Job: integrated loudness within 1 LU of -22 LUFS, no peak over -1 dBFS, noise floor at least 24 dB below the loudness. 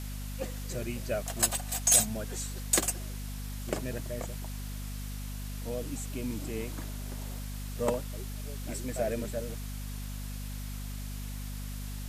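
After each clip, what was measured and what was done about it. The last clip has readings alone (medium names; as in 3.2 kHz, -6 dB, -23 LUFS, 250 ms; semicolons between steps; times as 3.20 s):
hum 50 Hz; highest harmonic 250 Hz; hum level -36 dBFS; noise floor -38 dBFS; noise floor target -57 dBFS; loudness -33.0 LUFS; peak level -8.5 dBFS; loudness target -22.0 LUFS
-> de-hum 50 Hz, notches 5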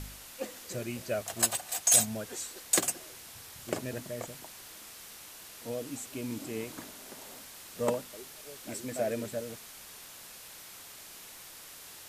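hum not found; noise floor -49 dBFS; noise floor target -56 dBFS
-> noise print and reduce 7 dB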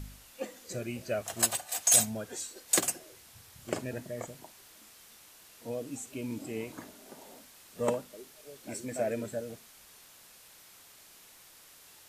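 noise floor -56 dBFS; loudness -31.5 LUFS; peak level -9.0 dBFS; loudness target -22.0 LUFS
-> trim +9.5 dB; peak limiter -1 dBFS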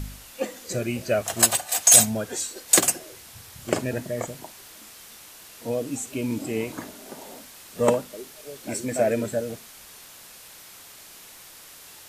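loudness -22.5 LUFS; peak level -1.0 dBFS; noise floor -47 dBFS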